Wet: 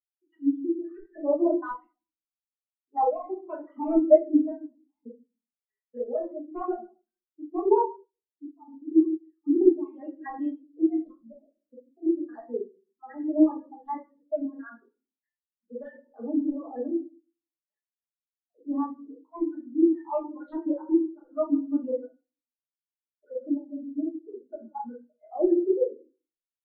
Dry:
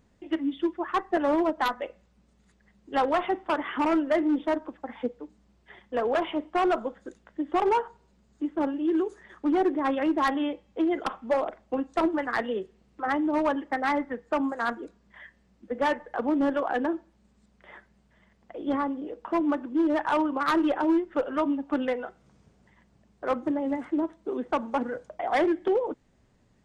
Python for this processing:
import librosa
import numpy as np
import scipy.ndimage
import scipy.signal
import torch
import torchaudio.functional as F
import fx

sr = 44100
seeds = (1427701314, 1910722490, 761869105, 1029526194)

y = fx.spec_dropout(x, sr, seeds[0], share_pct=41)
y = fx.cheby2_lowpass(y, sr, hz=2200.0, order=4, stop_db=70, at=(11.28, 12.29))
y = fx.room_shoebox(y, sr, seeds[1], volume_m3=230.0, walls='mixed', distance_m=1.4)
y = fx.spectral_expand(y, sr, expansion=2.5)
y = F.gain(torch.from_numpy(y), 2.5).numpy()